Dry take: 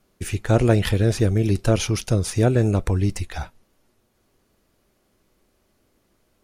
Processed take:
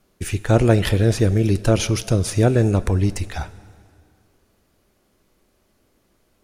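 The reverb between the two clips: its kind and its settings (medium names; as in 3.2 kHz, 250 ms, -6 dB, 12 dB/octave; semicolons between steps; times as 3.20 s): plate-style reverb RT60 2.3 s, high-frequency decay 0.9×, DRR 16 dB; trim +2 dB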